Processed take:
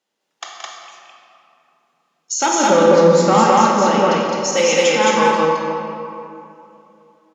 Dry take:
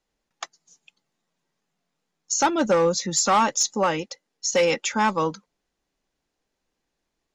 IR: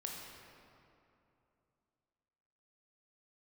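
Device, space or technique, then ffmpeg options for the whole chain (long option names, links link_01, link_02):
stadium PA: -filter_complex "[0:a]asettb=1/sr,asplit=3[link_01][link_02][link_03];[link_01]atrim=end=2.674[link_04];[link_02]atrim=start=2.67:end=3.91,asetpts=PTS-STARTPTS,afade=type=in:duration=0.004:curve=qsin,afade=type=out:start_time=1.236:duration=0.004:curve=qsin,aemphasis=mode=reproduction:type=riaa[link_05];[link_03]atrim=start=3.906[link_06];[link_04][link_05]acrossfade=duration=0.004:curve1=hsin:curve2=qsin[link_07];[link_07][link_06]acrossfade=duration=0.004:curve1=qsin:curve2=hsin,highpass=230,equalizer=frequency=3100:width_type=o:width=0.32:gain=4.5,aecho=1:1:174.9|212.8:0.398|0.891[link_08];[1:a]atrim=start_sample=2205[link_09];[link_08][link_09]afir=irnorm=-1:irlink=0,volume=6dB"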